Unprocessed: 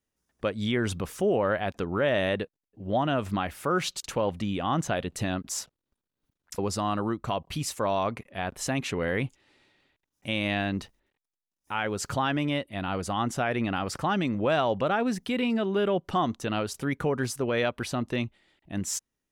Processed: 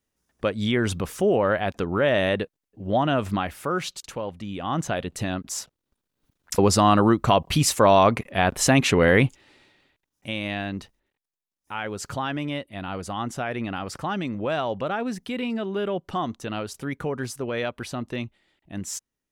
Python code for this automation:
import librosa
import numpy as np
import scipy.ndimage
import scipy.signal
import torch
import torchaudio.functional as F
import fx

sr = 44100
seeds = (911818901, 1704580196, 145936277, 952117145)

y = fx.gain(x, sr, db=fx.line((3.27, 4.0), (4.38, -5.5), (4.8, 1.5), (5.61, 1.5), (6.55, 11.0), (9.16, 11.0), (10.41, -1.5)))